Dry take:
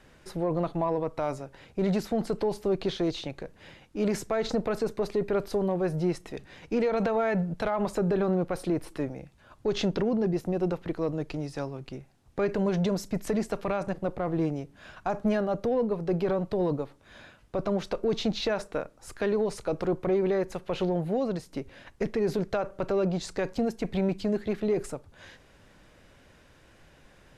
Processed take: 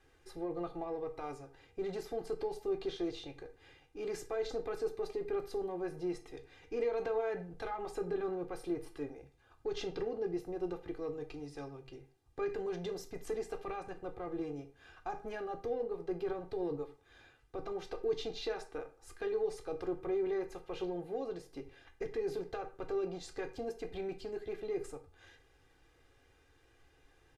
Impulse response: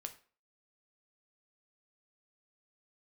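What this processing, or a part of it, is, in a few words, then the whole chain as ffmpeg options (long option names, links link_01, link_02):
microphone above a desk: -filter_complex "[0:a]aecho=1:1:2.5:0.83[link_01];[1:a]atrim=start_sample=2205[link_02];[link_01][link_02]afir=irnorm=-1:irlink=0,volume=-9dB"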